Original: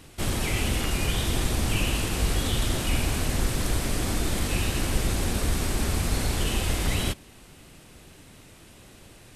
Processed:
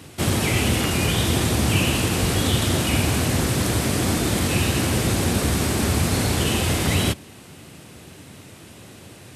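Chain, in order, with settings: HPF 80 Hz 24 dB/oct; low shelf 490 Hz +3 dB; gain +6 dB

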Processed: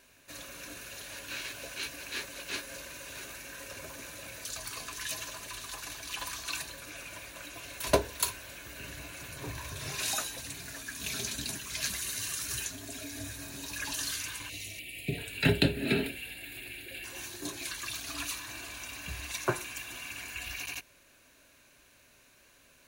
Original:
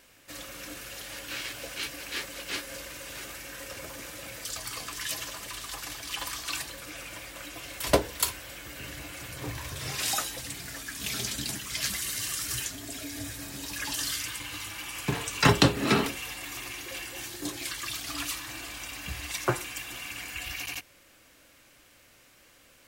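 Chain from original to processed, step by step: ripple EQ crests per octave 1.5, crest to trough 6 dB; 14.49–15.18 spectral gain 750–1800 Hz -23 dB; 14.79–17.04 fixed phaser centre 2600 Hz, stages 4; gain -3.5 dB

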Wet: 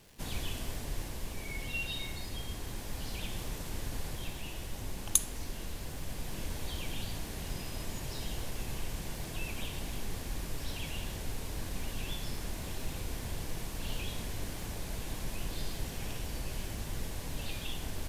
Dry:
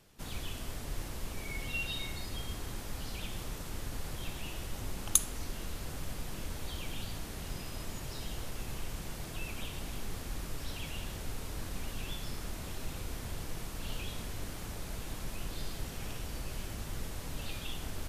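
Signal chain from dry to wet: vocal rider 2 s; crackle 250/s -46 dBFS; bell 1300 Hz -7 dB 0.21 oct

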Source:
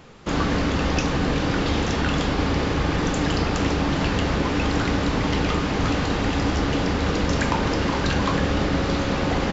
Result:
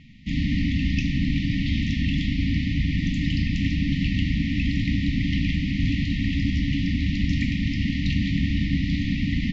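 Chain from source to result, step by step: brick-wall FIR band-stop 290–1800 Hz; air absorption 220 m; on a send: reverb RT60 0.65 s, pre-delay 72 ms, DRR 12.5 dB; on the sum: gain +1.5 dB

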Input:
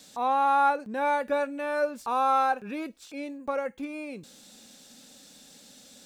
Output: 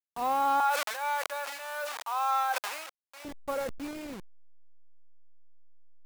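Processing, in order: level-crossing sampler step -34.5 dBFS; 0.6–3.25 HPF 750 Hz 24 dB/oct; sustainer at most 45 dB/s; gain -3 dB

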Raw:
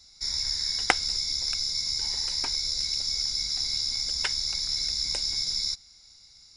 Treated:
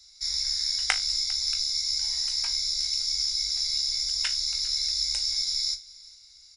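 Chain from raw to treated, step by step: passive tone stack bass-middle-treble 10-0-10; resonator 52 Hz, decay 0.22 s, harmonics all, mix 80%; echo 0.401 s -21.5 dB; gain +6.5 dB

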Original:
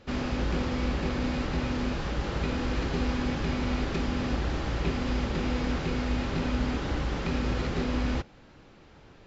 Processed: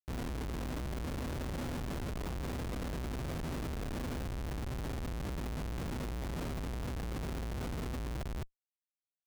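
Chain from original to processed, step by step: high shelf 6500 Hz +11 dB; reverse; compressor 16:1, threshold -37 dBFS, peak gain reduction 15.5 dB; reverse; notch 570 Hz, Q 15; echo 0.208 s -3.5 dB; Schmitt trigger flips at -39 dBFS; gain +2.5 dB

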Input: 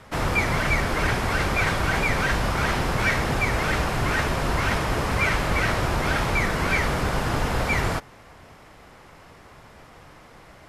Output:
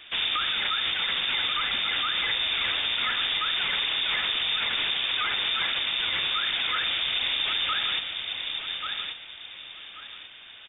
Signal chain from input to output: on a send: feedback echo 1.134 s, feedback 28%, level -10.5 dB; on the sum: inverted band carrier 3600 Hz; limiter -18 dBFS, peak gain reduction 9.5 dB

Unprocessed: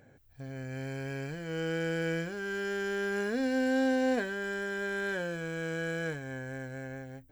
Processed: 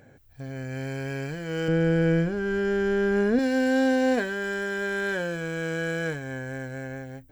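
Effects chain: 1.68–3.39 tilt -3 dB/oct; gain +5.5 dB

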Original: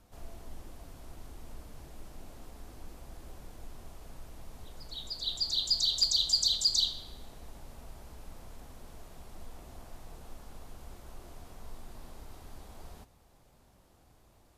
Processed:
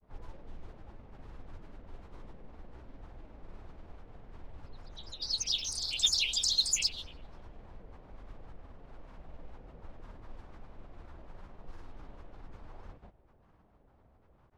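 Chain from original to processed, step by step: low-pass opened by the level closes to 1600 Hz, open at -26 dBFS; grains, pitch spread up and down by 7 st

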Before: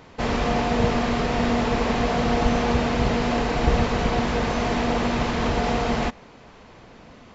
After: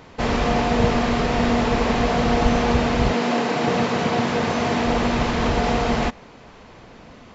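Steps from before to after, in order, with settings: 3.12–4.84 HPF 190 Hz -> 75 Hz 24 dB/oct; gain +2.5 dB

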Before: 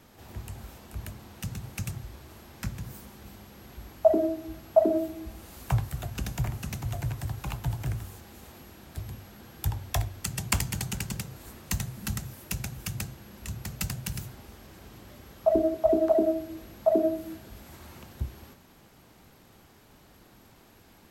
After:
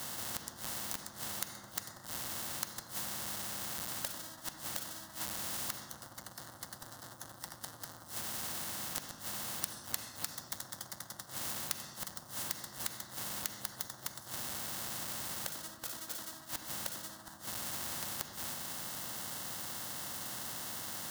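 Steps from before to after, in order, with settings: half-waves squared off; HPF 120 Hz 24 dB/oct; in parallel at +1 dB: compressor 16:1, threshold -33 dBFS, peak gain reduction 23.5 dB; on the sum: flipped gate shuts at -21 dBFS, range -31 dB; formant shift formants -5 st; fixed phaser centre 1000 Hz, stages 4; on a send at -8.5 dB: reverb RT60 0.65 s, pre-delay 3 ms; on the sum: spectral compressor 4:1; gain +6.5 dB

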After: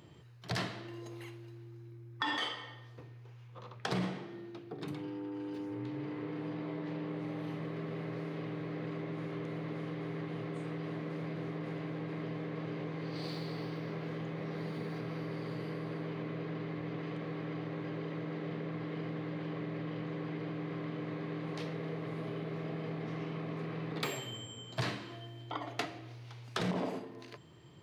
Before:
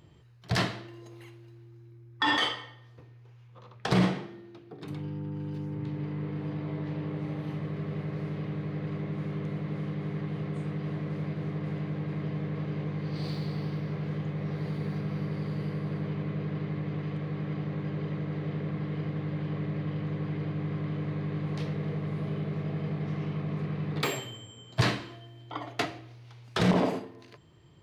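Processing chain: HPF 100 Hz; notches 50/100/150/200 Hz; compressor 2.5:1, threshold -40 dBFS, peak gain reduction 14 dB; gain +2.5 dB

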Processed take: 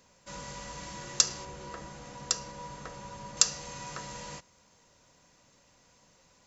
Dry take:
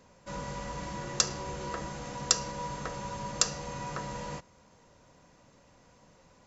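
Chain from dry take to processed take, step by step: high shelf 2100 Hz +11 dB, from 1.45 s +2.5 dB, from 3.37 s +11.5 dB; gain -6.5 dB

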